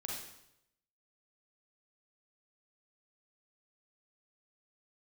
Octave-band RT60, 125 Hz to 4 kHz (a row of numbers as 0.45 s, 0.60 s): 0.95 s, 0.85 s, 0.85 s, 0.80 s, 0.75 s, 0.75 s